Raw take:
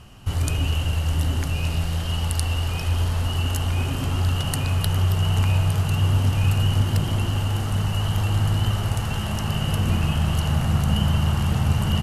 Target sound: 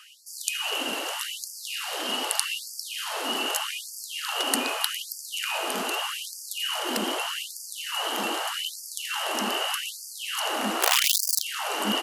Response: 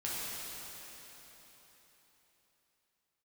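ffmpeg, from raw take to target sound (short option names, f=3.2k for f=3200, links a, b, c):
-filter_complex "[0:a]asettb=1/sr,asplit=3[a][b][c];[a]atrim=end=10.814[d];[b]atrim=start=10.81:end=11.42,asetpts=PTS-STARTPTS,afade=t=in:d=0.004:c=qsin,afade=t=out:st=0.606:d=0.004:c=qsin,aeval=exprs='(mod(5.96*val(0)+1,2)-1)/5.96':c=same[e];[c]atrim=start=11.416[f];[d][e]acrossfade=d=0.004:c1=hsin:c2=qsin[g];[g][f]acrossfade=d=0.004:c1=qsin:c2=hsin,afftfilt=real='re*gte(b*sr/1024,210*pow(4600/210,0.5+0.5*sin(2*PI*0.82*pts/sr)))':imag='im*gte(b*sr/1024,210*pow(4600/210,0.5+0.5*sin(2*PI*0.82*pts/sr)))':win_size=1024:overlap=0.75,volume=4.5dB"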